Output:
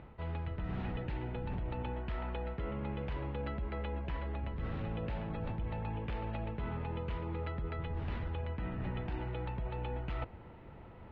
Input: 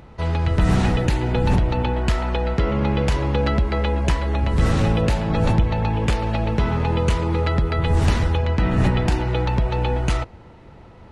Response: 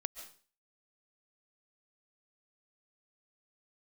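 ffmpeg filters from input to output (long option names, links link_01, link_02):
-af "lowpass=frequency=3200:width=0.5412,lowpass=frequency=3200:width=1.3066,areverse,acompressor=threshold=-28dB:ratio=6,areverse,volume=-7.5dB"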